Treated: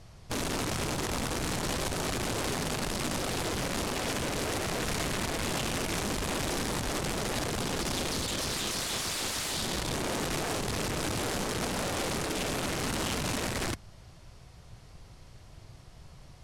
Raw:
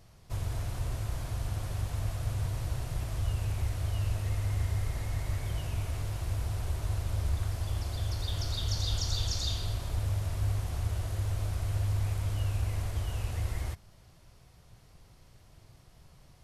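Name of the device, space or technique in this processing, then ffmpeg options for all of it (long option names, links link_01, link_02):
overflowing digital effects unit: -af "aeval=exprs='(mod(42.2*val(0)+1,2)-1)/42.2':channel_layout=same,lowpass=9500,volume=6dB"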